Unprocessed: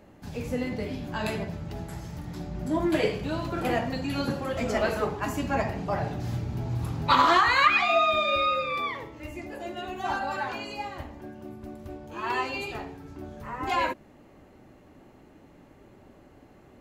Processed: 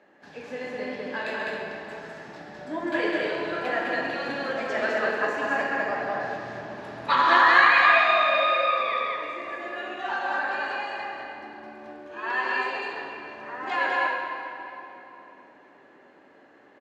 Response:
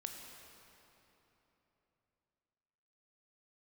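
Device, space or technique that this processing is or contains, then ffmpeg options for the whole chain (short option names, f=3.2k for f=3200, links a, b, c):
station announcement: -filter_complex "[0:a]highpass=380,lowpass=4.5k,equalizer=f=1.7k:t=o:w=0.21:g=11.5,aecho=1:1:134.1|204.1|271.1:0.355|0.794|0.316[a];[1:a]atrim=start_sample=2205[b];[a][b]afir=irnorm=-1:irlink=0,volume=1.5dB"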